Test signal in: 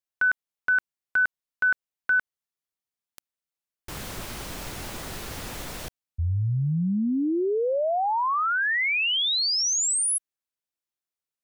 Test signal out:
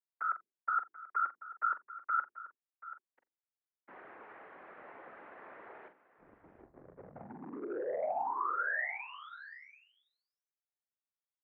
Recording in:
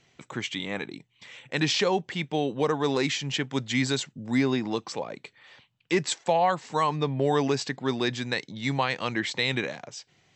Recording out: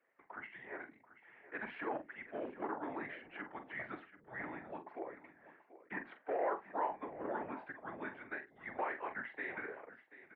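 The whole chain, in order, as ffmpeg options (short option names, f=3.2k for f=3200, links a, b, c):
-filter_complex "[0:a]bandreject=f=50:t=h:w=6,bandreject=f=100:t=h:w=6,bandreject=f=150:t=h:w=6,bandreject=f=200:t=h:w=6,bandreject=f=250:t=h:w=6,bandreject=f=300:t=h:w=6,bandreject=f=350:t=h:w=6,bandreject=f=400:t=h:w=6,bandreject=f=450:t=h:w=6,bandreject=f=500:t=h:w=6,afftfilt=real='hypot(re,im)*cos(2*PI*random(0))':imag='hypot(re,im)*sin(2*PI*random(1))':win_size=512:overlap=0.75,acrossover=split=1100[a][b];[a]volume=29dB,asoftclip=hard,volume=-29dB[c];[c][b]amix=inputs=2:normalize=0,asplit=2[d][e];[e]adelay=44,volume=-9.5dB[f];[d][f]amix=inputs=2:normalize=0,asplit=2[g][h];[h]aecho=0:1:43|735:0.119|0.168[i];[g][i]amix=inputs=2:normalize=0,highpass=f=510:t=q:w=0.5412,highpass=f=510:t=q:w=1.307,lowpass=f=2.1k:t=q:w=0.5176,lowpass=f=2.1k:t=q:w=0.7071,lowpass=f=2.1k:t=q:w=1.932,afreqshift=-150,volume=-4dB"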